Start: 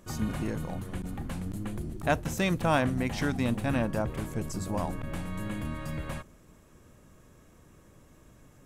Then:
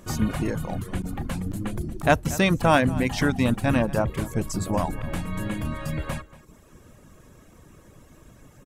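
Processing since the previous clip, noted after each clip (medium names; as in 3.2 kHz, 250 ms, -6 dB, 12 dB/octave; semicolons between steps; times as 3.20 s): reverb removal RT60 0.7 s; echo from a far wall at 40 m, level -18 dB; trim +7.5 dB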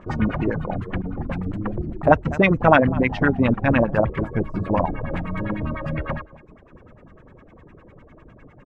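LFO low-pass sine 9.9 Hz 420–2500 Hz; trim +2 dB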